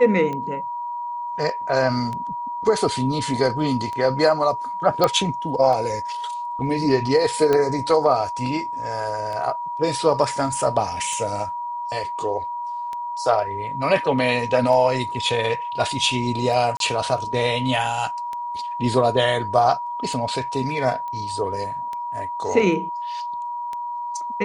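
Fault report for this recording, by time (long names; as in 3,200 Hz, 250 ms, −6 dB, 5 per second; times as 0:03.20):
scratch tick 33 1/3 rpm −18 dBFS
whistle 960 Hz −26 dBFS
0:05.04: click −5 dBFS
0:07.53: click −9 dBFS
0:16.77–0:16.80: drop-out 32 ms
0:21.08: click −22 dBFS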